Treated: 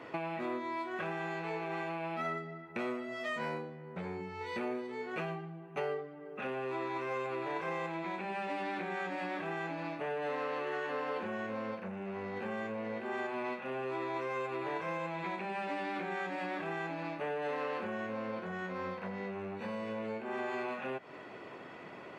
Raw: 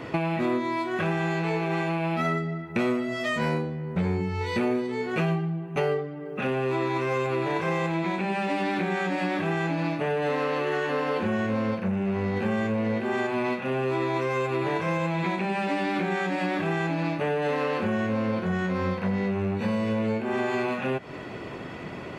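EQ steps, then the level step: HPF 660 Hz 6 dB/oct; high shelf 2500 Hz -9.5 dB; -5.0 dB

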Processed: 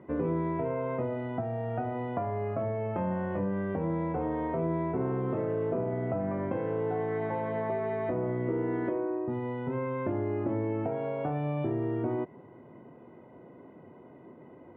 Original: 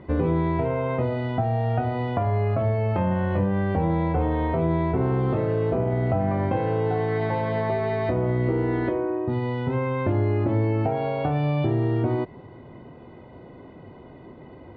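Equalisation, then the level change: BPF 170–3100 Hz; air absorption 390 m; notch 780 Hz, Q 24; -4.5 dB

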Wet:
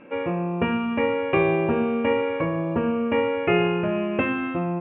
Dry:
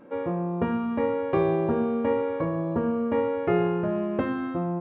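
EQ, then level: synth low-pass 2600 Hz, resonance Q 8.1; +2.0 dB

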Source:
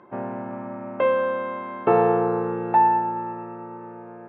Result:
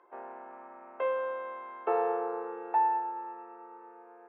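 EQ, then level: HPF 420 Hz 24 dB/oct; high shelf 3000 Hz -7 dB; notch 580 Hz, Q 12; -8.5 dB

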